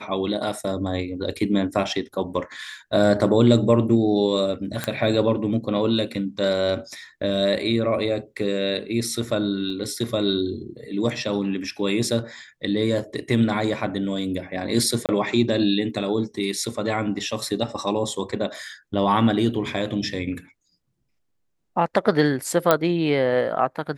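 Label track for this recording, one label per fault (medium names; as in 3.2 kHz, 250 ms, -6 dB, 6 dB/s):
4.840000	4.840000	pop -9 dBFS
9.700000	9.700000	dropout 3.2 ms
15.060000	15.090000	dropout 28 ms
22.710000	22.710000	pop -3 dBFS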